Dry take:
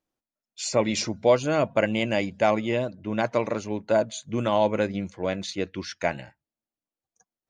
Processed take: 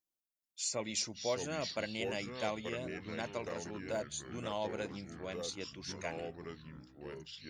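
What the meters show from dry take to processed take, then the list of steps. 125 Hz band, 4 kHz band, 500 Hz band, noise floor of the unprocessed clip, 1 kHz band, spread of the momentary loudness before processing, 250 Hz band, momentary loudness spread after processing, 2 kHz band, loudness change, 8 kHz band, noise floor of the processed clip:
-14.0 dB, -7.0 dB, -15.0 dB, under -85 dBFS, -15.0 dB, 8 LU, -15.0 dB, 12 LU, -11.5 dB, -14.0 dB, -4.5 dB, under -85 dBFS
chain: echoes that change speed 0.421 s, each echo -4 st, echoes 3, each echo -6 dB; pre-emphasis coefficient 0.8; gain -3 dB

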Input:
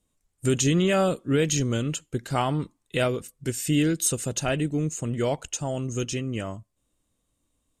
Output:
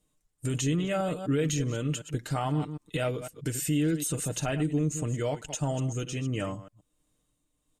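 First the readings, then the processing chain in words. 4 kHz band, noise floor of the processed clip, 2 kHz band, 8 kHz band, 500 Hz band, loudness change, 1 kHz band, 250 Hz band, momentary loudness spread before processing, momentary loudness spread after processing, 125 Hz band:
-6.5 dB, -77 dBFS, -6.0 dB, -5.5 dB, -5.5 dB, -4.0 dB, -5.0 dB, -3.5 dB, 10 LU, 7 LU, -2.0 dB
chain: reverse delay 0.126 s, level -13 dB; dynamic EQ 5200 Hz, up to -5 dB, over -42 dBFS, Q 1.1; tremolo 1.4 Hz, depth 43%; limiter -22 dBFS, peak gain reduction 10 dB; comb 6.6 ms, depth 50%

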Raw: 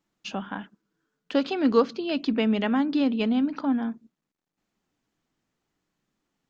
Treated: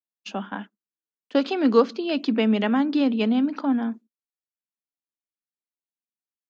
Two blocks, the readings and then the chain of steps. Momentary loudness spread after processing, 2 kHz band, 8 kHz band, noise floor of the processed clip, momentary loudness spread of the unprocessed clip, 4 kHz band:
15 LU, +2.0 dB, n/a, under -85 dBFS, 13 LU, +2.0 dB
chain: elliptic high-pass 200 Hz; expander -34 dBFS; gain +3 dB

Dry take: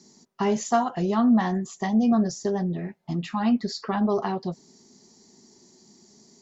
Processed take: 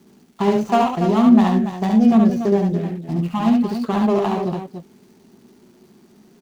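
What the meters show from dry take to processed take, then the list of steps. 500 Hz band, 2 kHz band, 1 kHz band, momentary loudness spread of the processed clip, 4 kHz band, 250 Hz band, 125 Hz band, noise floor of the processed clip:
+7.0 dB, +3.0 dB, +6.0 dB, 11 LU, +3.5 dB, +7.5 dB, +7.5 dB, -53 dBFS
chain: median filter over 25 samples; crackle 460/s -55 dBFS; loudspeakers at several distances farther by 24 m -3 dB, 98 m -9 dB; gain +5.5 dB

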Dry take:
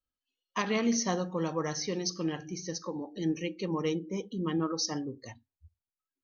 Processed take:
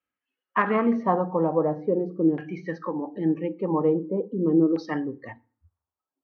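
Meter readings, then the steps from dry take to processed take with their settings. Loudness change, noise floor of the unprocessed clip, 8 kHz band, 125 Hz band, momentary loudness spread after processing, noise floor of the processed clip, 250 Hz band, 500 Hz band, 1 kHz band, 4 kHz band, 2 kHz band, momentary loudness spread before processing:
+7.5 dB, under -85 dBFS, n/a, +5.0 dB, 10 LU, under -85 dBFS, +8.0 dB, +9.5 dB, +9.5 dB, under -10 dB, +5.5 dB, 9 LU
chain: LFO low-pass saw down 0.42 Hz 380–2400 Hz; BPF 140–3100 Hz; FDN reverb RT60 0.42 s, low-frequency decay 1.3×, high-frequency decay 0.8×, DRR 18 dB; gain +6 dB

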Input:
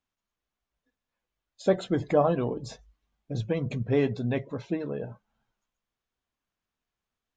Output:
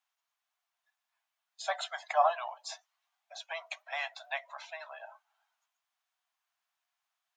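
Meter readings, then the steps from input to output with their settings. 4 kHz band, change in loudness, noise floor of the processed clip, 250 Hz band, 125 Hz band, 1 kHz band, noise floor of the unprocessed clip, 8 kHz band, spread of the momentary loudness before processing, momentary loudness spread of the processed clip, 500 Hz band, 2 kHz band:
+3.0 dB, -6.5 dB, under -85 dBFS, under -40 dB, under -40 dB, +3.0 dB, under -85 dBFS, n/a, 13 LU, 20 LU, -11.0 dB, +3.0 dB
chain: steep high-pass 650 Hz 96 dB/oct; gain +3 dB

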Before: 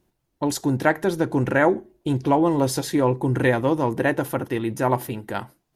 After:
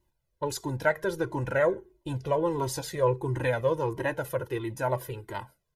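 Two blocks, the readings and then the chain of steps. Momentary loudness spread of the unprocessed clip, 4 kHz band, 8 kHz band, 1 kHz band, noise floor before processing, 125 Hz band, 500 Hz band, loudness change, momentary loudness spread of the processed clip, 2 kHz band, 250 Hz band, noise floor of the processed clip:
8 LU, -6.5 dB, -6.5 dB, -7.5 dB, -74 dBFS, -7.0 dB, -4.5 dB, -7.0 dB, 10 LU, -6.5 dB, -13.0 dB, -77 dBFS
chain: comb 2 ms, depth 63%; cascading flanger falling 1.5 Hz; gain -3.5 dB

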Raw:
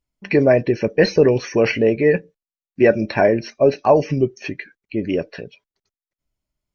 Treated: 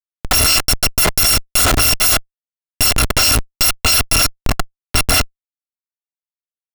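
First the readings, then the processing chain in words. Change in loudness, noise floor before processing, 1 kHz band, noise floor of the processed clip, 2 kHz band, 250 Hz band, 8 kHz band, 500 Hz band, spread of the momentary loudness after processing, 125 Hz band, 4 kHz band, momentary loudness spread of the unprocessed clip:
+4.5 dB, under -85 dBFS, +3.5 dB, under -85 dBFS, +5.5 dB, -7.5 dB, n/a, -12.5 dB, 7 LU, +2.0 dB, +19.5 dB, 13 LU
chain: FFT order left unsorted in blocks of 256 samples; Schmitt trigger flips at -19 dBFS; gain +6.5 dB

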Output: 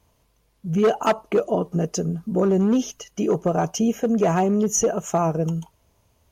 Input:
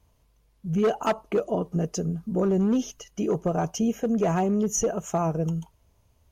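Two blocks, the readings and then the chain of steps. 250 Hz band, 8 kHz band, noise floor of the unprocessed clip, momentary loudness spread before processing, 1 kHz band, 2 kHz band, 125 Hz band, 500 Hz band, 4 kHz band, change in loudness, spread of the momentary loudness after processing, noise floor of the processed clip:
+3.5 dB, +5.0 dB, -64 dBFS, 7 LU, +5.0 dB, +5.0 dB, +3.0 dB, +4.5 dB, +5.0 dB, +4.0 dB, 7 LU, -65 dBFS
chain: low shelf 91 Hz -10 dB; gain +5 dB

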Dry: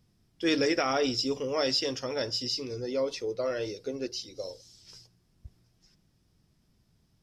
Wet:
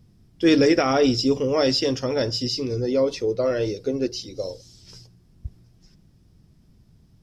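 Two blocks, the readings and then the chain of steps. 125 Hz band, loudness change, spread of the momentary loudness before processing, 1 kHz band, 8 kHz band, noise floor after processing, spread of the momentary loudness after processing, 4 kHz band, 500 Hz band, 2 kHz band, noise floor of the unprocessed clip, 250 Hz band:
+13.0 dB, +8.0 dB, 10 LU, +6.0 dB, +4.0 dB, -57 dBFS, 10 LU, +4.0 dB, +8.5 dB, +4.5 dB, -69 dBFS, +11.0 dB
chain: low shelf 450 Hz +10 dB; gain +4 dB

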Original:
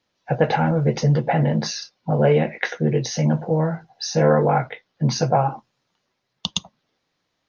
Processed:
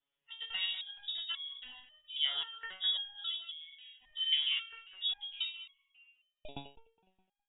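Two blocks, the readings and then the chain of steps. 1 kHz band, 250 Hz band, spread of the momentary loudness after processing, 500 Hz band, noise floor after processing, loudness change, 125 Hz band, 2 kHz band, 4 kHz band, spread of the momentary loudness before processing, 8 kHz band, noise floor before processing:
-31.5 dB, under -35 dB, 19 LU, under -40 dB, under -85 dBFS, -13.5 dB, under -40 dB, -13.5 dB, +0.5 dB, 11 LU, n/a, -75 dBFS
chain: thinning echo 0.207 s, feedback 33%, high-pass 300 Hz, level -11 dB; inverted band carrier 3600 Hz; stepped resonator 3.7 Hz 140–1100 Hz; gain -3.5 dB

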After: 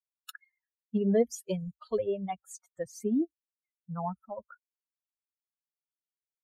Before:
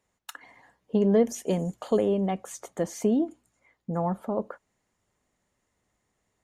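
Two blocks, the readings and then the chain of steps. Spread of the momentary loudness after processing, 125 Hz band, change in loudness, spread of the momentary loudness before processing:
18 LU, -6.0 dB, -5.0 dB, 19 LU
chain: per-bin expansion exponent 3

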